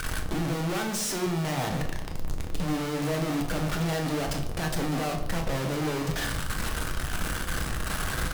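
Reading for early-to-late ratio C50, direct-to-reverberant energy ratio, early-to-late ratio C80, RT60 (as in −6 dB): 8.0 dB, 2.0 dB, 11.0 dB, 0.90 s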